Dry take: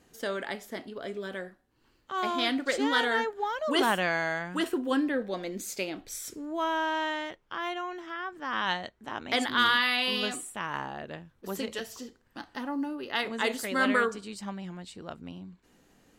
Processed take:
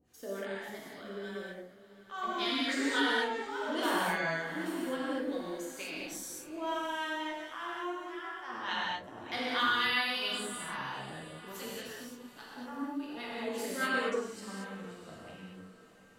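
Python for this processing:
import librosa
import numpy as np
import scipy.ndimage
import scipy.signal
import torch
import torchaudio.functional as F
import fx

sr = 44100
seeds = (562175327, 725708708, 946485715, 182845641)

y = fx.harmonic_tremolo(x, sr, hz=3.5, depth_pct=100, crossover_hz=710.0)
y = fx.echo_diffused(y, sr, ms=717, feedback_pct=44, wet_db=-16.0)
y = fx.rev_gated(y, sr, seeds[0], gate_ms=260, shape='flat', drr_db=-6.5)
y = y * librosa.db_to_amplitude(-7.5)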